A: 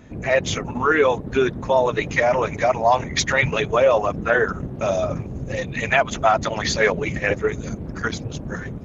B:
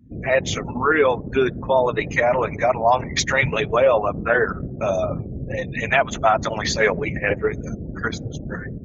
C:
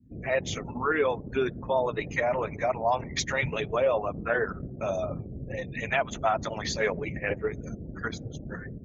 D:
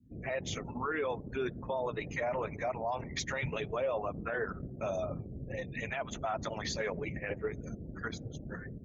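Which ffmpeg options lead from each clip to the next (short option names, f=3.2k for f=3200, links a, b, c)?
-af "afftdn=nr=34:nf=-37"
-af "adynamicequalizer=threshold=0.0251:dfrequency=1500:dqfactor=1.1:tfrequency=1500:tqfactor=1.1:attack=5:release=100:ratio=0.375:range=2:mode=cutabove:tftype=bell,volume=-8dB"
-af "alimiter=limit=-21dB:level=0:latency=1:release=37,volume=-4.5dB"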